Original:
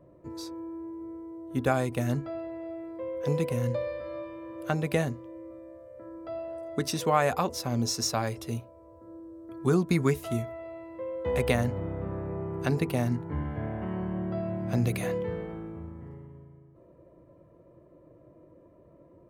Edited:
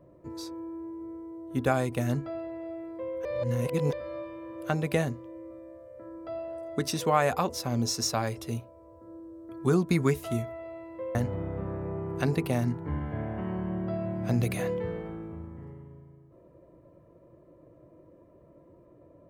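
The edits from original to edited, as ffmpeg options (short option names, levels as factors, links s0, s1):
-filter_complex "[0:a]asplit=4[s0][s1][s2][s3];[s0]atrim=end=3.252[s4];[s1]atrim=start=3.248:end=3.932,asetpts=PTS-STARTPTS,areverse[s5];[s2]atrim=start=3.928:end=11.152[s6];[s3]atrim=start=11.588[s7];[s4][s5]acrossfade=d=0.004:c1=hsin:c2=hsin[s8];[s8][s6]acrossfade=d=0.004:c1=hsin:c2=hsin[s9];[s9][s7]acrossfade=d=0.004:c1=hsin:c2=hsin"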